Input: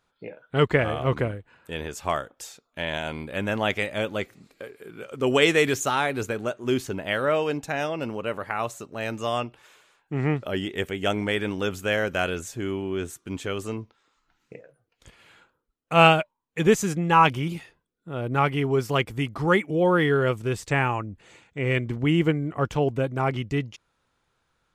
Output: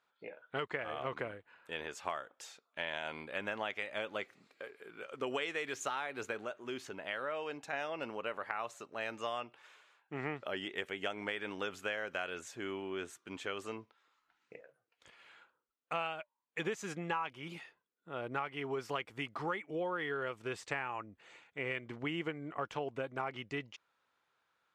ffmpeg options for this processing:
-filter_complex "[0:a]asettb=1/sr,asplit=3[a][b][c];[a]atrim=end=6.444[d];[b]atrim=start=6.44:end=7.73,asetpts=PTS-STARTPTS,afade=t=in:d=0.004:c=qsin,afade=t=out:st=1.286:d=0.004:c=qsin,acompressor=threshold=-36dB:ratio=1.5:attack=3.2:release=140:knee=1:detection=peak[e];[c]atrim=start=7.726[f];[d][e]acrossfade=d=0.004:c1=hsin:c2=qsin[g];[g][f]acrossfade=d=0.004:c1=qsin:c2=hsin,highpass=f=1.2k:p=1,aemphasis=mode=reproduction:type=75fm,acompressor=threshold=-32dB:ratio=12,volume=-1dB"

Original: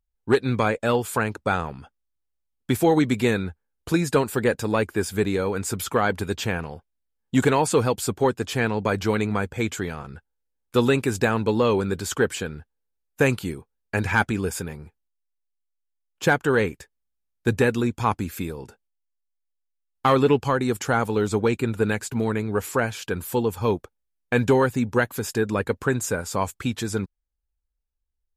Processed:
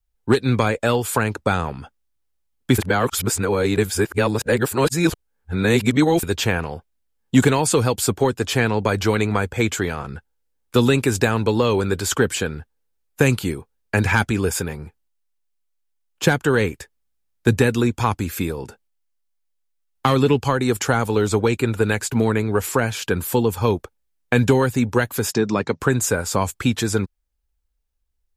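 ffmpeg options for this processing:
-filter_complex "[0:a]asettb=1/sr,asplit=3[a][b][c];[a]atrim=end=25.324[d];[b]atrim=start=25.32:end=25.8,asetpts=PTS-STARTPTS,afade=t=in:d=0.004:c=qsin,afade=t=out:st=0.476:d=0.004:c=qsin,highpass=150,equalizer=f=160:t=q:w=4:g=9,equalizer=f=500:t=q:w=4:g=-6,equalizer=f=1.6k:t=q:w=4:g=-7,equalizer=f=2.9k:t=q:w=4:g=-4,equalizer=f=5.7k:t=q:w=4:g=9,lowpass=f=6.5k:w=0.5412,lowpass=f=6.5k:w=1.3066[e];[c]atrim=start=25.796[f];[d][e]acrossfade=d=0.004:c1=hsin:c2=qsin[g];[g][f]acrossfade=d=0.004:c1=qsin:c2=hsin,asplit=3[h][i][j];[h]atrim=end=2.782[k];[i]atrim=start=2.778:end=6.232,asetpts=PTS-STARTPTS,areverse[l];[j]atrim=start=6.228[m];[k][l]acrossfade=d=0.004:c1=hsin:c2=hsin[n];[n][m]acrossfade=d=0.004:c1=hsin:c2=hsin,adynamicequalizer=threshold=0.0158:dfrequency=190:dqfactor=1.2:tfrequency=190:tqfactor=1.2:attack=5:release=100:ratio=0.375:range=3:mode=cutabove:tftype=bell,acrossover=split=260|3000[o][p][q];[p]acompressor=threshold=-24dB:ratio=6[r];[o][r][q]amix=inputs=3:normalize=0,volume=7dB"

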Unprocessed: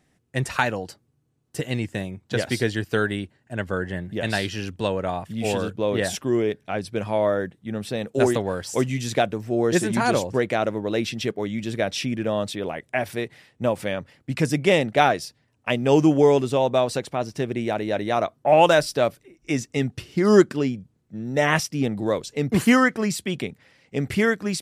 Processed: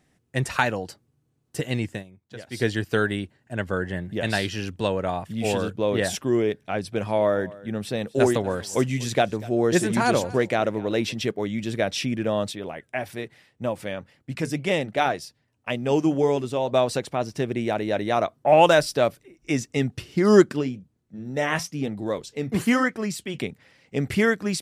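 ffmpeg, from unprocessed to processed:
-filter_complex "[0:a]asplit=3[a][b][c];[a]afade=t=out:st=6.84:d=0.02[d];[b]aecho=1:1:242:0.0944,afade=t=in:st=6.84:d=0.02,afade=t=out:st=11.15:d=0.02[e];[c]afade=t=in:st=11.15:d=0.02[f];[d][e][f]amix=inputs=3:normalize=0,asplit=3[g][h][i];[g]afade=t=out:st=12.51:d=0.02[j];[h]flanger=delay=1:depth=2.5:regen=-86:speed=1.9:shape=sinusoidal,afade=t=in:st=12.51:d=0.02,afade=t=out:st=16.71:d=0.02[k];[i]afade=t=in:st=16.71:d=0.02[l];[j][k][l]amix=inputs=3:normalize=0,asplit=3[m][n][o];[m]afade=t=out:st=20.6:d=0.02[p];[n]flanger=delay=2.9:depth=7.3:regen=-68:speed=1:shape=sinusoidal,afade=t=in:st=20.6:d=0.02,afade=t=out:st=23.37:d=0.02[q];[o]afade=t=in:st=23.37:d=0.02[r];[p][q][r]amix=inputs=3:normalize=0,asplit=3[s][t][u];[s]atrim=end=2.04,asetpts=PTS-STARTPTS,afade=t=out:st=1.91:d=0.13:silence=0.16788[v];[t]atrim=start=2.04:end=2.51,asetpts=PTS-STARTPTS,volume=-15.5dB[w];[u]atrim=start=2.51,asetpts=PTS-STARTPTS,afade=t=in:d=0.13:silence=0.16788[x];[v][w][x]concat=n=3:v=0:a=1"

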